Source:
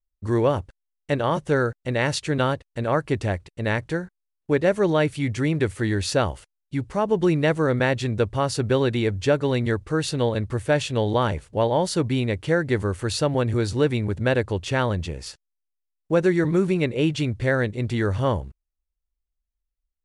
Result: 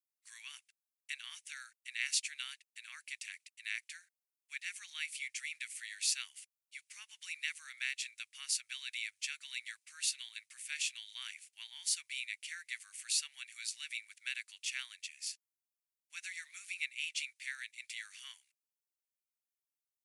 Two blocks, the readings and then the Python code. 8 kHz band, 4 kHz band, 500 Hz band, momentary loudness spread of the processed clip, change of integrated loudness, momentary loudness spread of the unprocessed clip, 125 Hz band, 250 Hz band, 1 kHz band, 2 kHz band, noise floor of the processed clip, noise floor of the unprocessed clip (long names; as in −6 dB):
−1.0 dB, −6.5 dB, below −40 dB, 16 LU, −16.5 dB, 7 LU, below −40 dB, below −40 dB, −35.5 dB, −11.5 dB, below −85 dBFS, −81 dBFS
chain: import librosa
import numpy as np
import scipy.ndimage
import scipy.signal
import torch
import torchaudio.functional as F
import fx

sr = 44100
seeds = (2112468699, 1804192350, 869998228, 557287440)

y = scipy.signal.sosfilt(scipy.signal.ellip(4, 1.0, 80, 2300.0, 'highpass', fs=sr, output='sos'), x)
y = fx.peak_eq(y, sr, hz=3600.0, db=-9.5, octaves=1.5)
y = F.gain(torch.from_numpy(y), 2.5).numpy()